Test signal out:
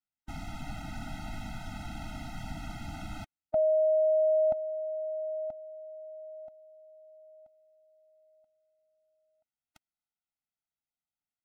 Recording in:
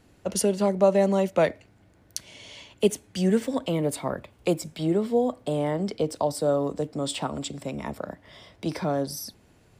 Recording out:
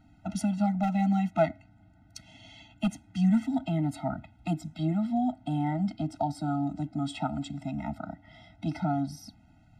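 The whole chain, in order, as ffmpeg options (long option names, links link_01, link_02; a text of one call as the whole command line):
ffmpeg -i in.wav -af "aemphasis=mode=reproduction:type=75fm,volume=12dB,asoftclip=hard,volume=-12dB,afftfilt=real='re*eq(mod(floor(b*sr/1024/310),2),0)':imag='im*eq(mod(floor(b*sr/1024/310),2),0)':win_size=1024:overlap=0.75" out.wav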